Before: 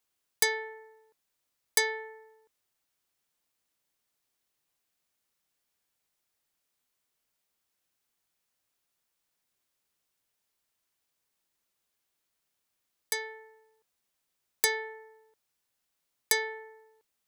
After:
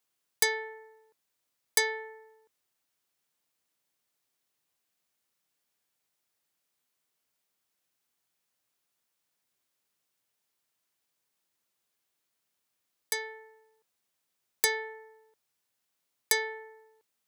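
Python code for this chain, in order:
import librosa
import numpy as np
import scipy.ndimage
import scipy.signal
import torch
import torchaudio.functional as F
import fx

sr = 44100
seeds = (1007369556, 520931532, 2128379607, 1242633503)

y = scipy.signal.sosfilt(scipy.signal.butter(2, 86.0, 'highpass', fs=sr, output='sos'), x)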